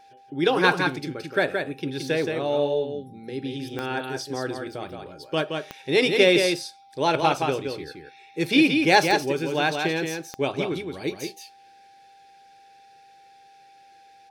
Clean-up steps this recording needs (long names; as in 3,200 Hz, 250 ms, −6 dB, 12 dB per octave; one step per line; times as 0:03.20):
clipped peaks rebuilt −6.5 dBFS
click removal
notch filter 790 Hz, Q 30
echo removal 172 ms −5 dB